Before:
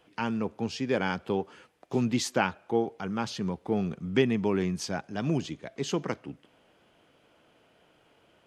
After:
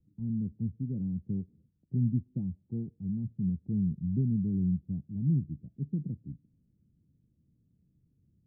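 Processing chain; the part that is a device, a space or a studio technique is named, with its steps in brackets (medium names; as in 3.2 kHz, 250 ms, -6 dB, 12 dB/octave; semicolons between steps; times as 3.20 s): the neighbour's flat through the wall (low-pass 190 Hz 24 dB/octave; peaking EQ 85 Hz +3 dB); trim +4.5 dB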